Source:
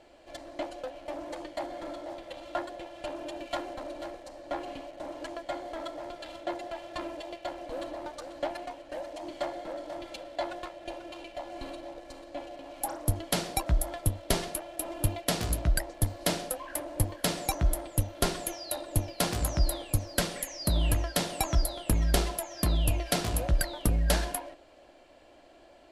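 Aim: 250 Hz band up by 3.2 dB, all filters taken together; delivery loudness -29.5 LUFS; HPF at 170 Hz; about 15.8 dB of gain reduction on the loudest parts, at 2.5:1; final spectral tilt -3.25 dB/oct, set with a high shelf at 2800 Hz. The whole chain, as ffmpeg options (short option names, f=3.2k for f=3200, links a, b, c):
-af "highpass=170,equalizer=f=250:t=o:g=6,highshelf=f=2.8k:g=5,acompressor=threshold=-48dB:ratio=2.5,volume=16dB"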